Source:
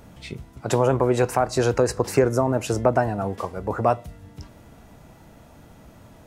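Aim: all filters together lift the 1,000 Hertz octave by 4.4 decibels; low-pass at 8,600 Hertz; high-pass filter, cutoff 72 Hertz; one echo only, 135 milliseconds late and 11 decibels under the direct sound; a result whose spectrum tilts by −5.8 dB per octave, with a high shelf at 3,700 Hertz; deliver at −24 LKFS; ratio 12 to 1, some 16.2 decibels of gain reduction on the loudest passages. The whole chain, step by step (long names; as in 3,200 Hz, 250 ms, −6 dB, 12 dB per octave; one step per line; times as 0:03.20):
high-pass filter 72 Hz
low-pass filter 8,600 Hz
parametric band 1,000 Hz +6.5 dB
high-shelf EQ 3,700 Hz −6 dB
downward compressor 12 to 1, threshold −28 dBFS
single-tap delay 135 ms −11 dB
level +10.5 dB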